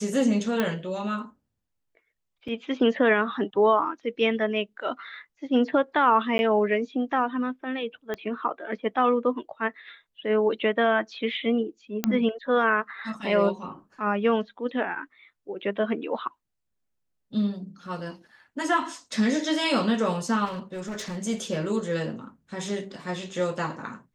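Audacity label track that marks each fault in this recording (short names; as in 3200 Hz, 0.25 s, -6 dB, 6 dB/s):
0.600000	0.600000	pop -11 dBFS
2.480000	2.480000	gap 4.1 ms
6.380000	6.390000	gap 11 ms
8.140000	8.140000	pop -18 dBFS
12.040000	12.040000	pop -9 dBFS
20.450000	21.170000	clipped -29.5 dBFS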